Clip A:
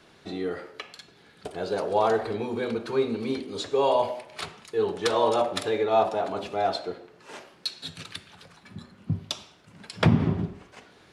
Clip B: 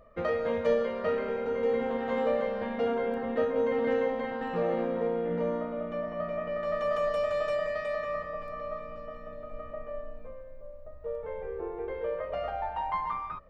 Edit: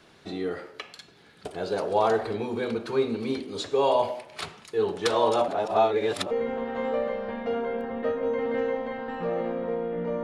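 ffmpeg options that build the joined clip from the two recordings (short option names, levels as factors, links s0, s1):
-filter_complex "[0:a]apad=whole_dur=10.23,atrim=end=10.23,asplit=2[s0][s1];[s0]atrim=end=5.482[s2];[s1]atrim=start=5.478:end=6.312,asetpts=PTS-STARTPTS,areverse[s3];[1:a]atrim=start=1.638:end=5.56[s4];[s2][s3]acrossfade=d=0.004:c1=hsin:c2=hsin[s5];[s5][s4]acrossfade=d=0.004:c1=hsin:c2=hsin"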